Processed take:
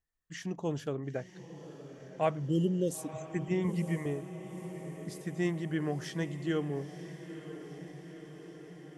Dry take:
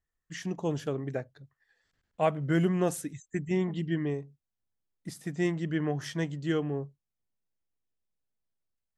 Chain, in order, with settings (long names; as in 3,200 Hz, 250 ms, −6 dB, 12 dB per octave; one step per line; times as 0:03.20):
0:02.48–0:03.16: time-frequency box erased 610–2,700 Hz
0:03.64–0:04.06: EQ curve with evenly spaced ripples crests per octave 0.85, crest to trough 18 dB
feedback delay with all-pass diffusion 955 ms, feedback 67%, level −12 dB
level −3 dB